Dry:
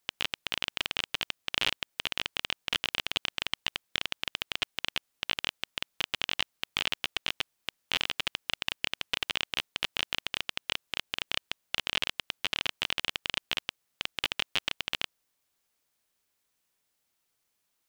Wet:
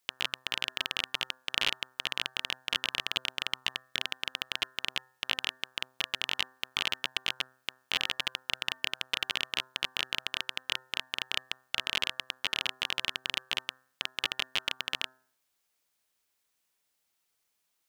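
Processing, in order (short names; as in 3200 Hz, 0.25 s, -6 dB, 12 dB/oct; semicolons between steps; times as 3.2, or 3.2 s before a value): low shelf 390 Hz -4.5 dB; de-hum 129.3 Hz, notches 14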